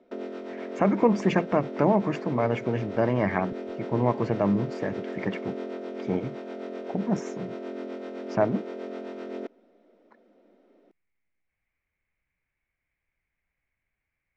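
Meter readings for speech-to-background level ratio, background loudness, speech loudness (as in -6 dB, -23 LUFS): 9.5 dB, -36.5 LUFS, -27.0 LUFS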